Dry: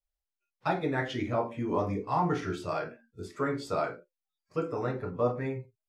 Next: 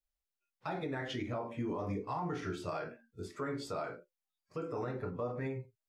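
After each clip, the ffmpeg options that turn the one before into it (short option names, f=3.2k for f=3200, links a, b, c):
-af "alimiter=level_in=2dB:limit=-24dB:level=0:latency=1:release=122,volume=-2dB,volume=-2.5dB"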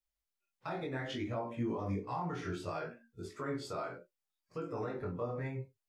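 -af "flanger=delay=17:depth=7.1:speed=0.65,volume=2.5dB"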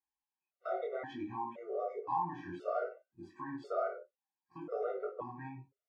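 -af "bandpass=f=720:t=q:w=1.4:csg=0,afftfilt=real='re*gt(sin(2*PI*0.96*pts/sr)*(1-2*mod(floor(b*sr/1024/380),2)),0)':imag='im*gt(sin(2*PI*0.96*pts/sr)*(1-2*mod(floor(b*sr/1024/380),2)),0)':win_size=1024:overlap=0.75,volume=8dB"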